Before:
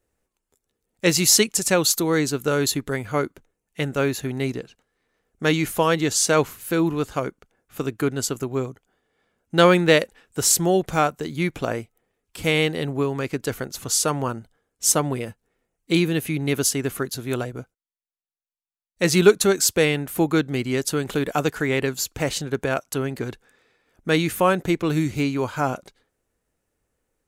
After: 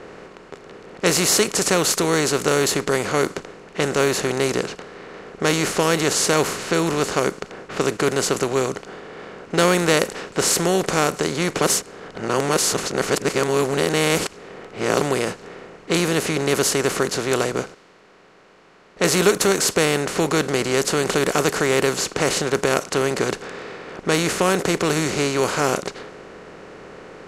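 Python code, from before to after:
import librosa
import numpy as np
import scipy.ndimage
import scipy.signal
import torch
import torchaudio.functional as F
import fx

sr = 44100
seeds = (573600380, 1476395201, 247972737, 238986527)

y = fx.edit(x, sr, fx.reverse_span(start_s=11.61, length_s=3.4), tone=tone)
y = fx.bin_compress(y, sr, power=0.4)
y = fx.env_lowpass(y, sr, base_hz=2500.0, full_db=-8.5)
y = F.gain(torch.from_numpy(y), -5.5).numpy()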